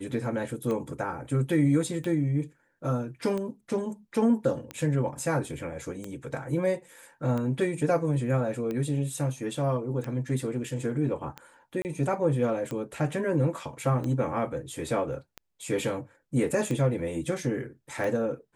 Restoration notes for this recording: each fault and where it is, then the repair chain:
tick 45 rpm -21 dBFS
11.82–11.85 s: dropout 29 ms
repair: de-click; interpolate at 11.82 s, 29 ms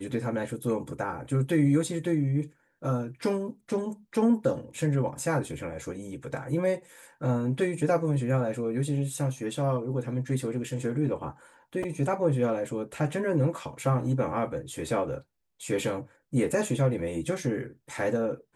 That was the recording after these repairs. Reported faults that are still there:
nothing left

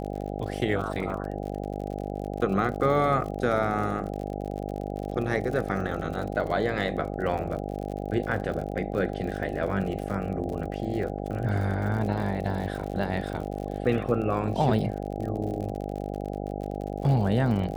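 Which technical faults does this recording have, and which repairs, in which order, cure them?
buzz 50 Hz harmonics 16 -33 dBFS
crackle 60 per s -34 dBFS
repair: de-click; de-hum 50 Hz, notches 16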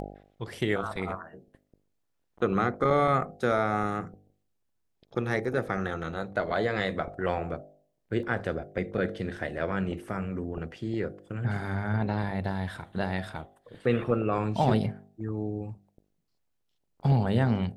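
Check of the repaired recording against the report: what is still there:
nothing left

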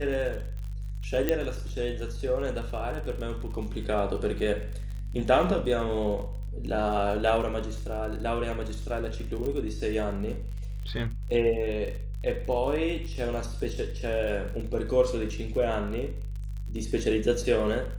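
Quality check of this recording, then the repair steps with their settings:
crackle 47 per s -35 dBFS
hum 50 Hz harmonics 3 -34 dBFS
1.29 s: pop -11 dBFS
9.46 s: pop -22 dBFS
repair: de-click; de-hum 50 Hz, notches 3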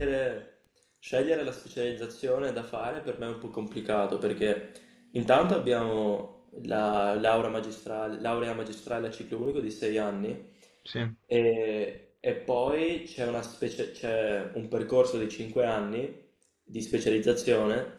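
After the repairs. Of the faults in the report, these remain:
9.46 s: pop

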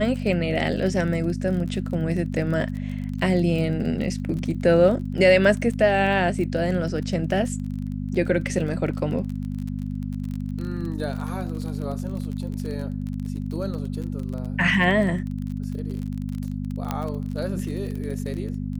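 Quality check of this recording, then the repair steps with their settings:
crackle 30 per s -30 dBFS
hum 50 Hz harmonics 5 -29 dBFS
16.91 s: pop -12 dBFS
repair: de-click; de-hum 50 Hz, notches 5

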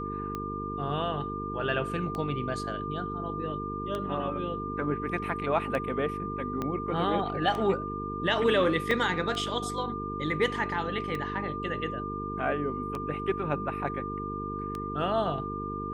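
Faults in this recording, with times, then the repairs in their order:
buzz 50 Hz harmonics 9 -37 dBFS
tick 33 1/3 rpm -21 dBFS
whine 1.2 kHz -35 dBFS
6.62 s: pop -19 dBFS
8.91 s: dropout 2.9 ms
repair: de-click; de-hum 50 Hz, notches 9; band-stop 1.2 kHz, Q 30; interpolate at 8.91 s, 2.9 ms

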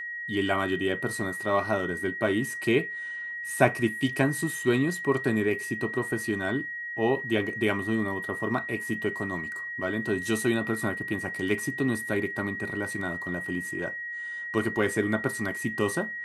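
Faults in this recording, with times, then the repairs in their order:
whine 1.9 kHz -33 dBFS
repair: band-stop 1.9 kHz, Q 30

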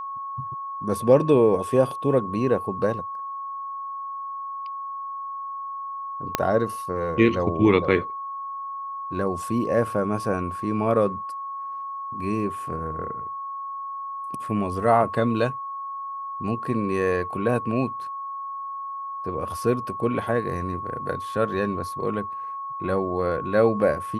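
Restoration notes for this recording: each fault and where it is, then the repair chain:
whine 1.1 kHz -30 dBFS
6.35 s: pop -5 dBFS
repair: de-click; band-stop 1.1 kHz, Q 30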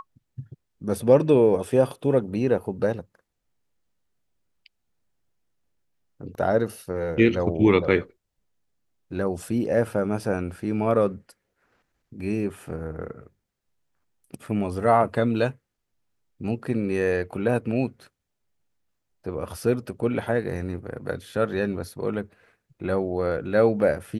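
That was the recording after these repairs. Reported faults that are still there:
6.35 s: pop

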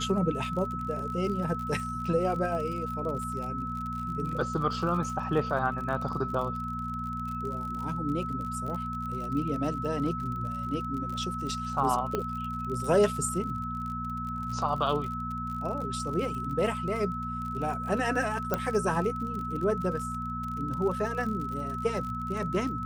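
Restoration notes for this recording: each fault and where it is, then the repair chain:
crackle 46 per s -35 dBFS
hum 60 Hz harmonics 4 -37 dBFS
whine 1.3 kHz -34 dBFS
12.15 s: pop -16 dBFS
18.54 s: pop -13 dBFS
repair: de-click; de-hum 60 Hz, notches 4; band-stop 1.3 kHz, Q 30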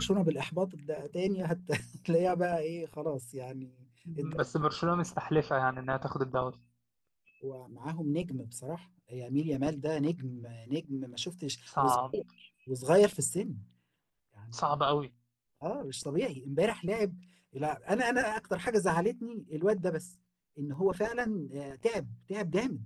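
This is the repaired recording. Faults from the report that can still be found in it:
18.54 s: pop

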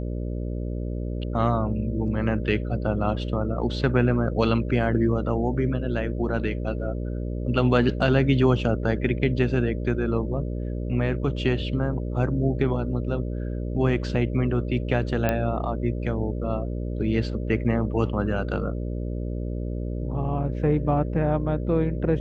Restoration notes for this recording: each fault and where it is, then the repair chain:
buzz 60 Hz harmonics 10 -29 dBFS
15.29 s: pop -10 dBFS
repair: de-click; de-hum 60 Hz, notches 10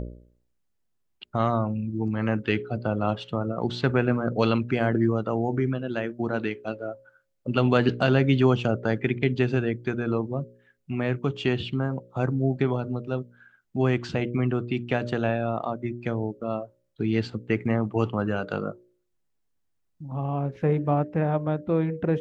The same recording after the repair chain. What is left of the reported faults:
nothing left

